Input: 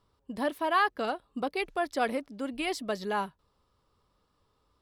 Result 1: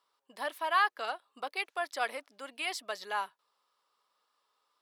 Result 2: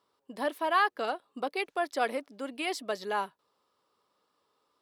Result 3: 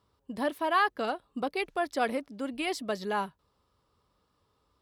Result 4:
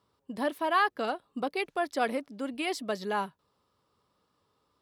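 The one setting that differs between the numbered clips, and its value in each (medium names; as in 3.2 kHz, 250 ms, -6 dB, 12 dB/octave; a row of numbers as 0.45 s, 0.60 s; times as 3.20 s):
high-pass, cutoff frequency: 850 Hz, 330 Hz, 46 Hz, 120 Hz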